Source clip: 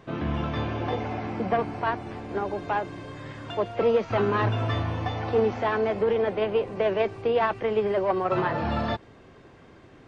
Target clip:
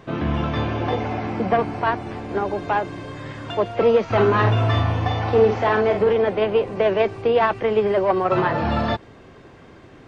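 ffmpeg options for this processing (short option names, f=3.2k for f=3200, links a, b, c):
-filter_complex "[0:a]asettb=1/sr,asplit=3[a][b][c];[a]atrim=end=4.084[d];[b]atrim=start=4.08:end=6.13,asetpts=PTS-STARTPTS,afade=t=in:d=0.004:c=qsin,afade=t=out:st=2.046:d=0.004:c=qsin,asplit=2[e][f];[f]adelay=47,volume=-6dB[g];[e][g]amix=inputs=2:normalize=0,atrim=end_sample=90405[h];[c]atrim=start=6.126[i];[d][h]acrossfade=d=0.004:c1=hsin:c2=qsin[j];[j][i]acrossfade=d=0.004:c1=qsin:c2=hsin,volume=5.5dB"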